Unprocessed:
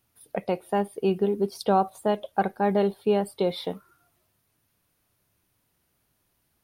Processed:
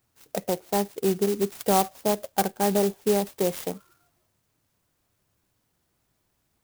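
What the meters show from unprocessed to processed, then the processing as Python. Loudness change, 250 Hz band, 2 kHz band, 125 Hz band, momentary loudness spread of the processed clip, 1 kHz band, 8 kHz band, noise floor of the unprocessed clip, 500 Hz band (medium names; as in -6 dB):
+0.5 dB, 0.0 dB, 0.0 dB, 0.0 dB, 11 LU, -1.0 dB, +15.0 dB, -73 dBFS, -0.5 dB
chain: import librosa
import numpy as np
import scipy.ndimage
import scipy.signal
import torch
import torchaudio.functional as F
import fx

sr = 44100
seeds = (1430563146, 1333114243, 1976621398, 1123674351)

y = fx.clock_jitter(x, sr, seeds[0], jitter_ms=0.092)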